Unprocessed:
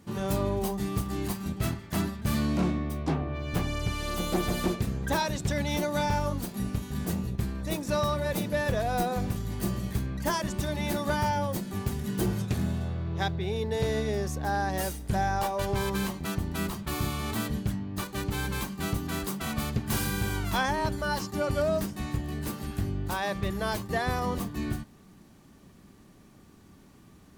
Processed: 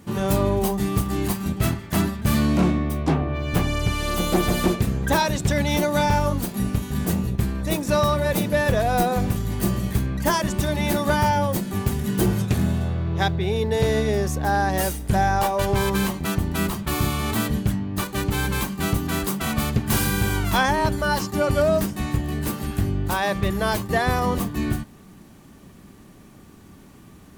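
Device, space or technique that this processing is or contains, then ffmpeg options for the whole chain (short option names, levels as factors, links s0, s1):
exciter from parts: -filter_complex "[0:a]asplit=2[s0][s1];[s1]highpass=f=2800:w=0.5412,highpass=f=2800:w=1.3066,asoftclip=type=tanh:threshold=0.0168,highpass=4100,volume=0.266[s2];[s0][s2]amix=inputs=2:normalize=0,volume=2.37"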